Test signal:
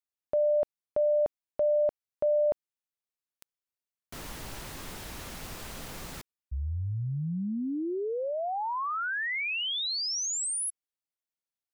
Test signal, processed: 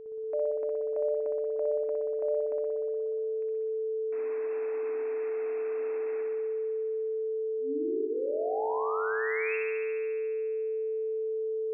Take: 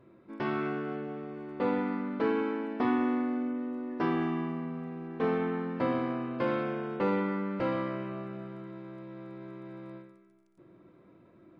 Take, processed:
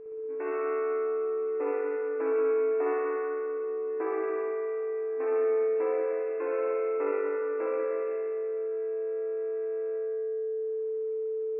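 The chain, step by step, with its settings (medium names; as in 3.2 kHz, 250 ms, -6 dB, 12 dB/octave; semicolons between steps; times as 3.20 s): FFT band-pass 260–2700 Hz; whistle 440 Hz -36 dBFS; spring tank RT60 2.1 s, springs 59 ms, chirp 35 ms, DRR -1.5 dB; trim -6 dB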